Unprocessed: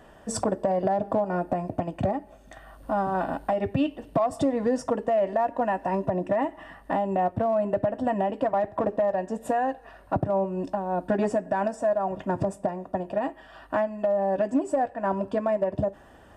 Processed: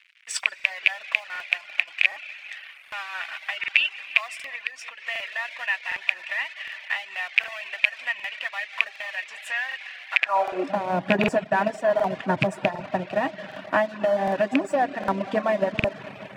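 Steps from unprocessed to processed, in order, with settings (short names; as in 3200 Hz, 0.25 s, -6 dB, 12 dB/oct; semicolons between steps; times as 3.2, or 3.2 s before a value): rattling part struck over -25 dBFS, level -18 dBFS; reverb RT60 4.1 s, pre-delay 35 ms, DRR 9 dB; crossover distortion -46.5 dBFS; bell 2300 Hz +14.5 dB 2.5 oct; 4.56–5.07 compressor 10:1, threshold -24 dBFS, peak gain reduction 8.5 dB; reverb removal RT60 0.51 s; high-pass sweep 2300 Hz -> 140 Hz, 10.12–10.88; crackling interface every 0.76 s, samples 2048, repeat, from 0.55; 11.44–11.9 three-band expander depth 100%; gain -2 dB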